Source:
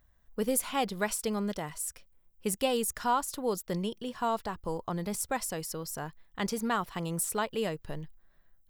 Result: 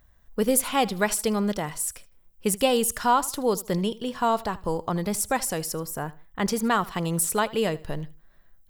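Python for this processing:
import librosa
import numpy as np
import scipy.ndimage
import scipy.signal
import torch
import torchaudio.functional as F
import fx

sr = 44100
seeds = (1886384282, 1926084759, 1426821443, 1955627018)

y = fx.peak_eq(x, sr, hz=4800.0, db=-9.0, octaves=1.5, at=(5.72, 6.46))
y = fx.echo_feedback(y, sr, ms=78, feedback_pct=28, wet_db=-20.0)
y = y * librosa.db_to_amplitude(7.0)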